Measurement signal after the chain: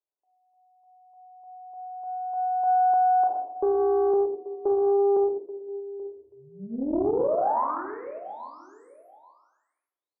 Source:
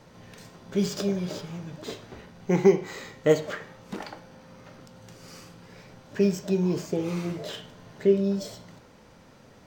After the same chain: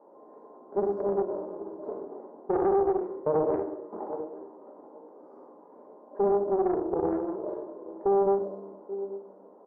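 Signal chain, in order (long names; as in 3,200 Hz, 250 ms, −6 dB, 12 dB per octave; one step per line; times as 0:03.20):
elliptic band-pass filter 290–1,000 Hz, stop band 50 dB
on a send: repeating echo 833 ms, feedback 18%, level −17 dB
on the sum: rectangular room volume 370 cubic metres, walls mixed, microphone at 1.3 metres
brickwall limiter −17 dBFS
highs frequency-modulated by the lows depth 0.44 ms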